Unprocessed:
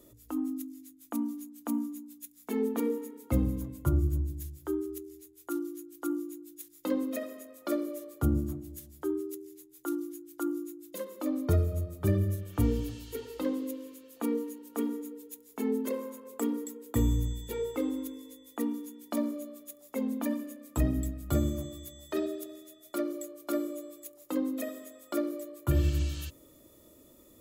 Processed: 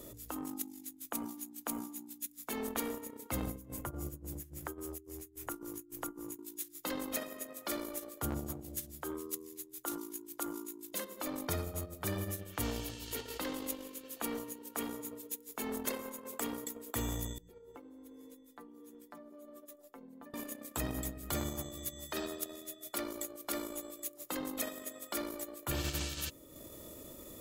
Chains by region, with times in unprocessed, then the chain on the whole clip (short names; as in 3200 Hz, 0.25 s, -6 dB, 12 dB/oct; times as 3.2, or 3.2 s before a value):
3.5–6.39 bell 3900 Hz -6 dB 0.73 oct + tremolo 3.6 Hz, depth 85% + three-band squash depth 70%
17.38–20.34 high shelf 2000 Hz -9.5 dB + compressor 20:1, threshold -44 dBFS + metallic resonator 88 Hz, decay 0.21 s, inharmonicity 0.008
whole clip: transient shaper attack -5 dB, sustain -9 dB; spectral compressor 2:1; gain -2.5 dB